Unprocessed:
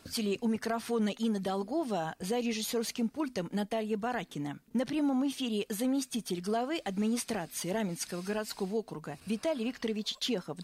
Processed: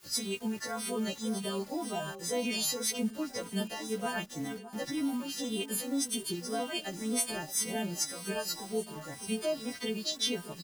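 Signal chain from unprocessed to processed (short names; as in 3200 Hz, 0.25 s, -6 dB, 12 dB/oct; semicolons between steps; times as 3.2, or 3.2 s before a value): frequency quantiser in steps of 2 st; in parallel at +1 dB: vocal rider within 3 dB 2 s; on the sum: bit-crush 7-bit; echo with dull and thin repeats by turns 0.611 s, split 1200 Hz, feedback 63%, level -12 dB; endless flanger 2.9 ms -1.9 Hz; gain -6.5 dB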